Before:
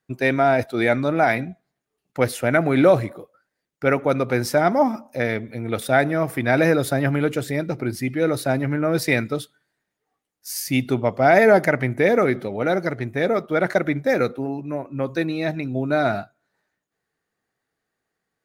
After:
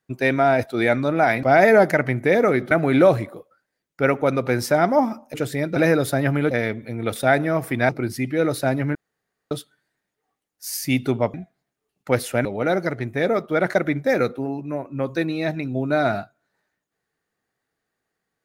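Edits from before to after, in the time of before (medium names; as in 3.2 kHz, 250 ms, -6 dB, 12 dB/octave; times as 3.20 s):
1.43–2.54 s: swap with 11.17–12.45 s
5.17–6.55 s: swap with 7.30–7.72 s
8.78–9.34 s: room tone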